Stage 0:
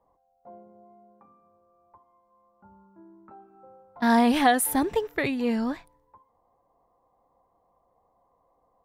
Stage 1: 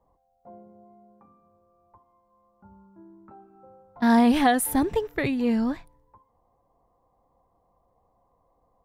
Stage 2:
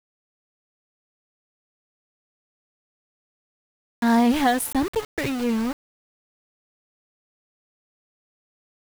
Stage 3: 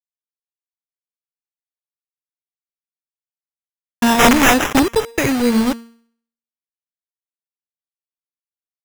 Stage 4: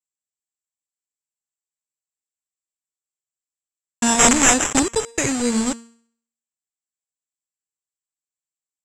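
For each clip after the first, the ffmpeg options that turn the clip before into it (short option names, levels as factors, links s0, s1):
-af "lowshelf=f=210:g=10,volume=0.841"
-af "aeval=exprs='val(0)*gte(abs(val(0)),0.0422)':c=same"
-af "bandreject=f=231.3:t=h:w=4,bandreject=f=462.6:t=h:w=4,bandreject=f=693.9:t=h:w=4,bandreject=f=925.2:t=h:w=4,bandreject=f=1156.5:t=h:w=4,bandreject=f=1387.8:t=h:w=4,bandreject=f=1619.1:t=h:w=4,bandreject=f=1850.4:t=h:w=4,bandreject=f=2081.7:t=h:w=4,bandreject=f=2313:t=h:w=4,bandreject=f=2544.3:t=h:w=4,bandreject=f=2775.6:t=h:w=4,bandreject=f=3006.9:t=h:w=4,bandreject=f=3238.2:t=h:w=4,bandreject=f=3469.5:t=h:w=4,bandreject=f=3700.8:t=h:w=4,bandreject=f=3932.1:t=h:w=4,bandreject=f=4163.4:t=h:w=4,bandreject=f=4394.7:t=h:w=4,bandreject=f=4626:t=h:w=4,bandreject=f=4857.3:t=h:w=4,bandreject=f=5088.6:t=h:w=4,bandreject=f=5319.9:t=h:w=4,bandreject=f=5551.2:t=h:w=4,bandreject=f=5782.5:t=h:w=4,bandreject=f=6013.8:t=h:w=4,bandreject=f=6245.1:t=h:w=4,bandreject=f=6476.4:t=h:w=4,bandreject=f=6707.7:t=h:w=4,bandreject=f=6939:t=h:w=4,bandreject=f=7170.3:t=h:w=4,bandreject=f=7401.6:t=h:w=4,bandreject=f=7632.9:t=h:w=4,bandreject=f=7864.2:t=h:w=4,bandreject=f=8095.5:t=h:w=4,bandreject=f=8326.8:t=h:w=4,acrusher=samples=10:mix=1:aa=0.000001,aeval=exprs='(mod(5.01*val(0)+1,2)-1)/5.01':c=same,volume=2.82"
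-af "lowpass=f=7600:t=q:w=12,volume=0.531"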